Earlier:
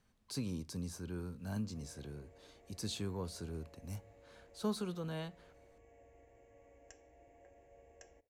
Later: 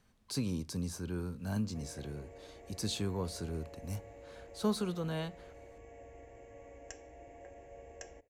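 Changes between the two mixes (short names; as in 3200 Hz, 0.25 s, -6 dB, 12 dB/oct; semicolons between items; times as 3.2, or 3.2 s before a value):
speech +4.5 dB; background +10.0 dB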